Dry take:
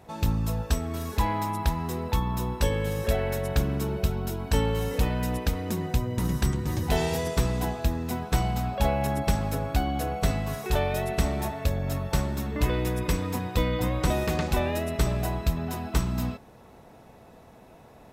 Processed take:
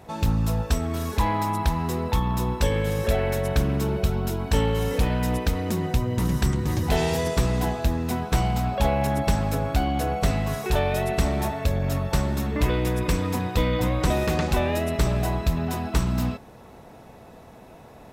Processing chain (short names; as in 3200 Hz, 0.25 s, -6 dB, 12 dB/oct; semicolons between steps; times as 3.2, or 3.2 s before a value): in parallel at -3 dB: limiter -22 dBFS, peak gain reduction 9.5 dB; on the sum: Doppler distortion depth 0.17 ms